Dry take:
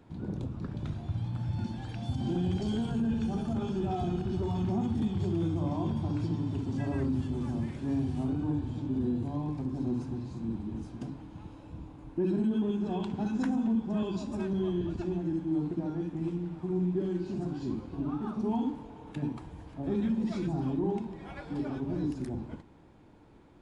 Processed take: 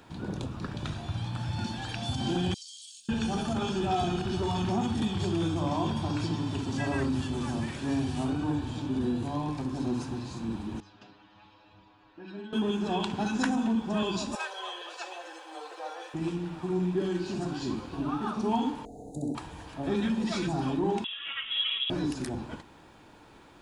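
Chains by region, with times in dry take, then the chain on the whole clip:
0:02.54–0:03.09: inverse Chebyshev high-pass filter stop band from 1,300 Hz, stop band 60 dB + downward compressor 4 to 1, threshold −56 dBFS
0:10.80–0:12.53: low-pass filter 4,600 Hz 24 dB per octave + low-shelf EQ 480 Hz −10.5 dB + stiff-string resonator 100 Hz, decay 0.21 s, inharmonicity 0.002
0:14.35–0:16.14: Butterworth high-pass 460 Hz 48 dB per octave + comb filter 3.9 ms, depth 59%
0:18.85–0:19.35: Chebyshev band-stop filter 750–4,000 Hz, order 5 + flat-topped bell 4,300 Hz −15 dB 1 octave + flutter between parallel walls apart 11.1 metres, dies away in 0.87 s
0:21.04–0:21.90: high-pass filter 820 Hz 6 dB per octave + voice inversion scrambler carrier 3,600 Hz
whole clip: tilt shelving filter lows −7.5 dB, about 690 Hz; notch filter 2,100 Hz, Q 12; level +6.5 dB

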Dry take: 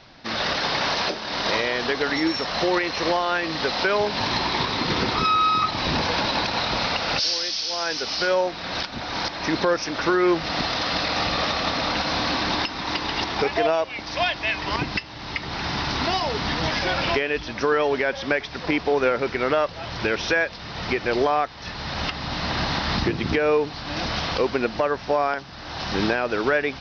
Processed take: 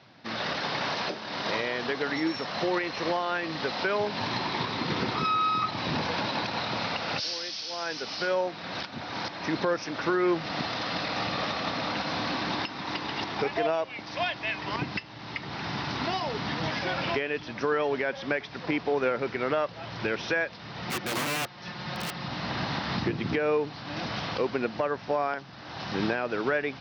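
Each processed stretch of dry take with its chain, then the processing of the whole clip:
0:20.86–0:22.28: comb filter 5.6 ms, depth 55% + wrap-around overflow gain 18 dB
whole clip: high-pass filter 100 Hz 24 dB per octave; bass and treble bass +3 dB, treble −5 dB; level −6 dB

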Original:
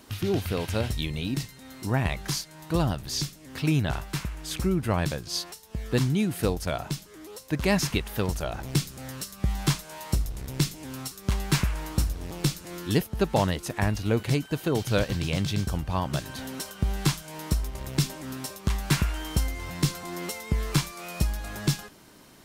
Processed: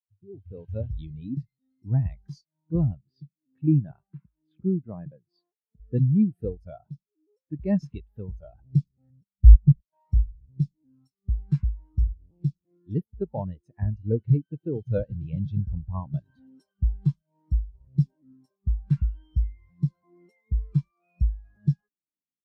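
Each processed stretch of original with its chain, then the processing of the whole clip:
0:03.01–0:05.80: high-pass filter 130 Hz + high-frequency loss of the air 220 metres
0:09.10–0:09.93: spectral tilt −2.5 dB per octave + output level in coarse steps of 19 dB
whole clip: automatic gain control gain up to 11.5 dB; every bin expanded away from the loudest bin 2.5 to 1

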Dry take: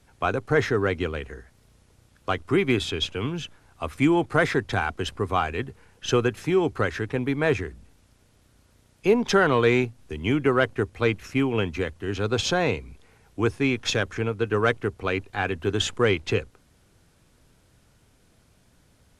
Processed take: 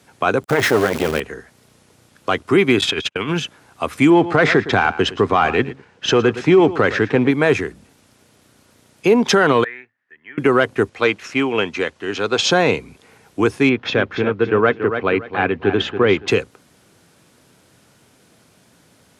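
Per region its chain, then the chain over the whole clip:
0:00.43–0:01.20: converter with a step at zero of −25.5 dBFS + saturating transformer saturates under 640 Hz
0:02.81–0:03.40: noise gate −32 dBFS, range −41 dB + parametric band 1,800 Hz +8 dB 1.7 octaves + compressor whose output falls as the input rises −29 dBFS, ratio −0.5
0:04.10–0:07.31: leveller curve on the samples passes 1 + high-frequency loss of the air 110 metres + single-tap delay 112 ms −17 dB
0:09.64–0:10.38: resonant band-pass 1,800 Hz, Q 14 + spectral tilt −2.5 dB per octave
0:10.89–0:12.51: low-pass filter 7,300 Hz + low-shelf EQ 280 Hz −11 dB
0:13.69–0:16.28: high-frequency loss of the air 310 metres + repeating echo 282 ms, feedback 26%, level −9.5 dB
whole clip: high-pass filter 160 Hz 12 dB per octave; boost into a limiter +13 dB; level −3.5 dB

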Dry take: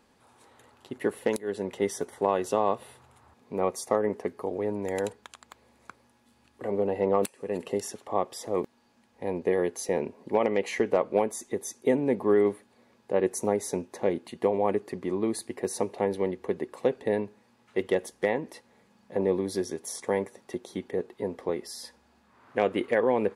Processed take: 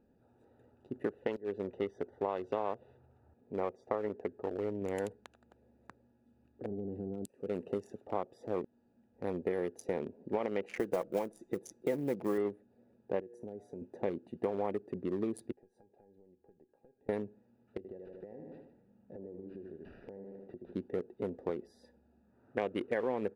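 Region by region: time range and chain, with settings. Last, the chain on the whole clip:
0:01.09–0:04.82: low-pass filter 4,300 Hz + parametric band 180 Hz −4.5 dB 1.1 octaves
0:06.66–0:07.30: flat-topped bell 1,200 Hz −12.5 dB 2.9 octaves + downward compressor 4 to 1, threshold −32 dBFS + highs frequency-modulated by the lows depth 0.3 ms
0:10.75–0:12.38: one scale factor per block 5 bits + comb filter 6 ms, depth 38%
0:13.20–0:13.82: tuned comb filter 120 Hz, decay 1.1 s + downward compressor 4 to 1, threshold −36 dBFS
0:15.52–0:17.09: high-shelf EQ 9,700 Hz −11.5 dB + downward compressor 20 to 1, threshold −35 dBFS + tuned comb filter 820 Hz, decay 0.18 s, mix 90%
0:17.77–0:20.75: repeating echo 76 ms, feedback 44%, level −8.5 dB + downward compressor 10 to 1, threshold −39 dBFS + linearly interpolated sample-rate reduction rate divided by 6×
whole clip: adaptive Wiener filter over 41 samples; downward compressor 3 to 1, threshold −30 dBFS; level −1.5 dB

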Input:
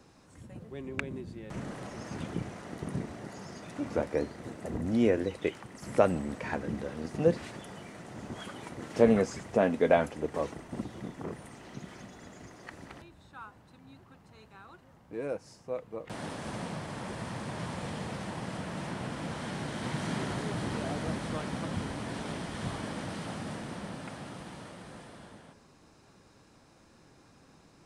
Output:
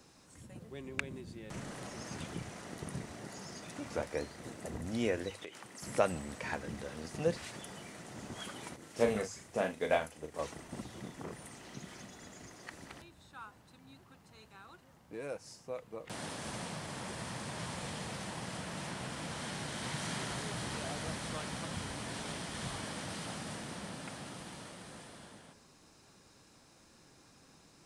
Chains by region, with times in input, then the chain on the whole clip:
0:05.30–0:05.82: high-pass filter 260 Hz 6 dB per octave + downward compressor, threshold −38 dBFS
0:08.76–0:10.39: high-shelf EQ 9,400 Hz +7 dB + double-tracking delay 38 ms −6 dB + expander for the loud parts, over −35 dBFS
whole clip: high-shelf EQ 3,000 Hz +9.5 dB; mains-hum notches 50/100 Hz; dynamic equaliser 280 Hz, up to −6 dB, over −40 dBFS, Q 0.83; level −4 dB

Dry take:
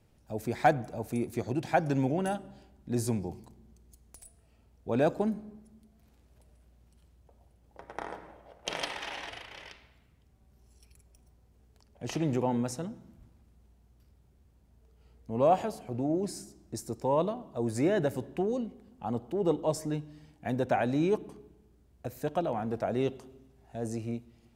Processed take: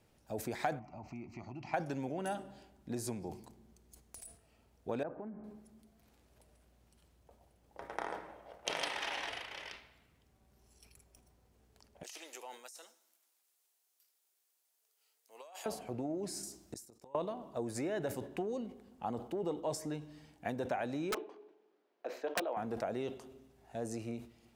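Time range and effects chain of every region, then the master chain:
0:00.79–0:01.74: downward compressor 3 to 1, threshold −36 dBFS + high-frequency loss of the air 190 metres + phaser with its sweep stopped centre 2,400 Hz, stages 8
0:05.03–0:05.44: low-pass filter 1,800 Hz 24 dB per octave + downward compressor 5 to 1, threshold −40 dBFS
0:12.03–0:15.66: high-pass filter 330 Hz 24 dB per octave + first difference + compressor whose output falls as the input rises −50 dBFS
0:16.43–0:17.15: high-shelf EQ 3,400 Hz +9.5 dB + gate with flip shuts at −27 dBFS, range −31 dB
0:21.11–0:22.57: high-pass filter 350 Hz 24 dB per octave + high-frequency loss of the air 210 metres + wrap-around overflow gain 22 dB
whole clip: downward compressor 5 to 1, threshold −33 dBFS; low-shelf EQ 210 Hz −10 dB; level that may fall only so fast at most 130 dB per second; level +1 dB

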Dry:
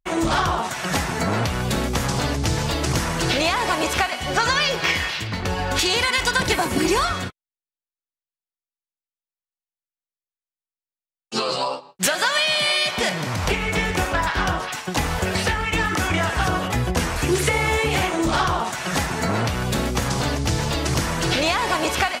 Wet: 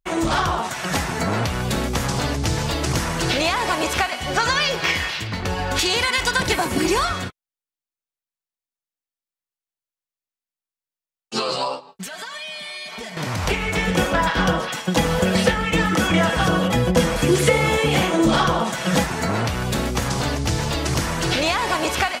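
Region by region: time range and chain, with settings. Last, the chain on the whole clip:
0:11.87–0:13.17: downward compressor, threshold −34 dBFS + comb filter 4.5 ms, depth 96%
0:13.87–0:19.04: comb filter 6.1 ms, depth 38% + hollow resonant body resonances 220/510/3,300 Hz, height 11 dB
whole clip: no processing

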